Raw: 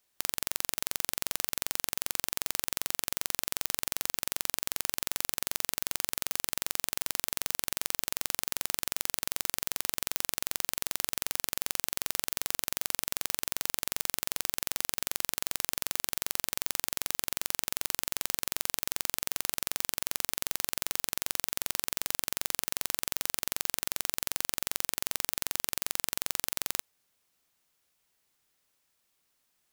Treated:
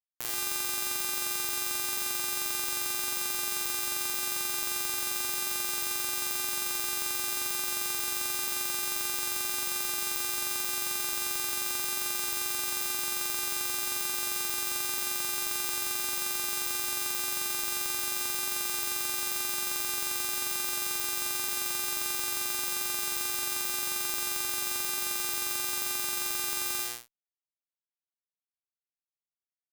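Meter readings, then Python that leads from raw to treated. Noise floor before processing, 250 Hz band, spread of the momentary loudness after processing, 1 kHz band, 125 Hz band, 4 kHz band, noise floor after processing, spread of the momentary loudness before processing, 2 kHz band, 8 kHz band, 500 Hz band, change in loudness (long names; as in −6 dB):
−76 dBFS, +1.5 dB, 0 LU, +3.5 dB, −4.5 dB, +2.0 dB, below −85 dBFS, 0 LU, +3.0 dB, +2.5 dB, +0.5 dB, +2.5 dB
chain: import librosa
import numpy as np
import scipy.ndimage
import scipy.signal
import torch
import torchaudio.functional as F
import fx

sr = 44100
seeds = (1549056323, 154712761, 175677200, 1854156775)

y = fx.comb_fb(x, sr, f0_hz=120.0, decay_s=0.69, harmonics='all', damping=0.0, mix_pct=50)
y = fx.fuzz(y, sr, gain_db=46.0, gate_db=-55.0)
y = y * 10.0 ** (-2.0 / 20.0)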